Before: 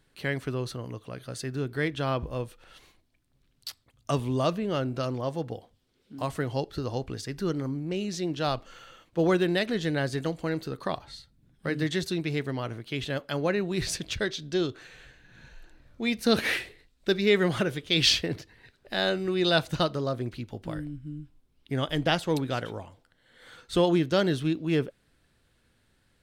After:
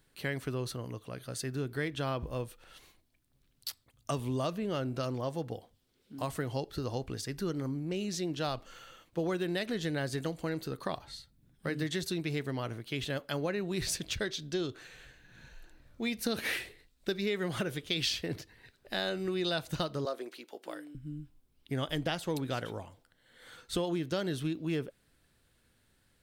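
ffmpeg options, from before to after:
-filter_complex "[0:a]asettb=1/sr,asplit=3[a][b][c];[a]atrim=end=20.054[d];[b]atrim=start=20.05:end=20.95,asetpts=PTS-STARTPTS,afade=t=in:d=0.004:c=qsin,afade=t=out:st=0.896:d=0.004:c=qsin,highpass=f=350:w=0.5412,highpass=f=350:w=1.3066[e];[c]atrim=start=20.946[f];[d][e]acrossfade=d=0.004:c1=hsin:c2=qsin[g];[g][f]acrossfade=d=0.004:c1=qsin:c2=hsin,highshelf=f=9.3k:g=10,acompressor=threshold=-26dB:ratio=6,volume=-3dB"

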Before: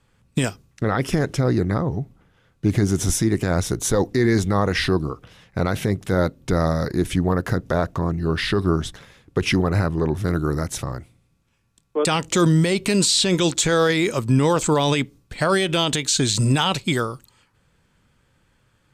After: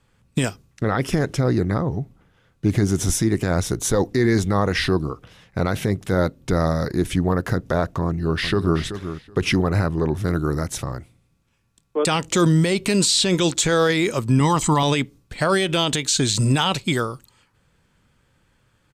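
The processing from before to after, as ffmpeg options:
-filter_complex "[0:a]asplit=2[a][b];[b]afade=t=in:st=8.05:d=0.01,afade=t=out:st=8.8:d=0.01,aecho=0:1:380|760:0.298538|0.0447807[c];[a][c]amix=inputs=2:normalize=0,asettb=1/sr,asplit=3[d][e][f];[d]atrim=end=14.404[g];[e]atrim=start=14.4:end=14.83,asetpts=PTS-STARTPTS,afade=t=in:d=0.004:c=qsin,afade=t=out:st=0.426:d=0.004:c=qsin,aecho=1:1:1:0.65,atrim=end_sample=18963[h];[f]atrim=start=14.826[i];[g][h]acrossfade=d=0.004:c1=hsin:c2=qsin[j];[j][i]acrossfade=d=0.004:c1=qsin:c2=hsin"

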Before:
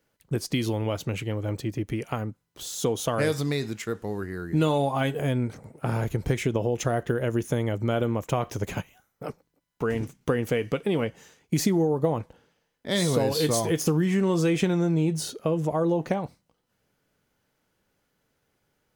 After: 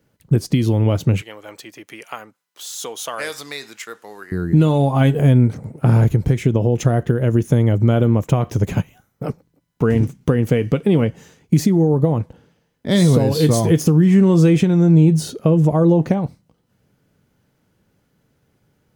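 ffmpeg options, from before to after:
-filter_complex "[0:a]asettb=1/sr,asplit=3[a][b][c];[a]atrim=end=1.214[d];[b]atrim=start=1.21:end=4.32,asetpts=PTS-STARTPTS,afade=t=in:d=0.004:c=qsin,afade=t=out:st=3.106:d=0.004:c=qsin,highpass=1k[e];[c]atrim=start=4.316[f];[d][e]acrossfade=d=0.004:c1=hsin:c2=qsin[g];[g][f]acrossfade=d=0.004:c1=qsin:c2=hsin,equalizer=f=130:t=o:w=2.9:g=11.5,alimiter=limit=-9dB:level=0:latency=1:release=398,volume=4dB"

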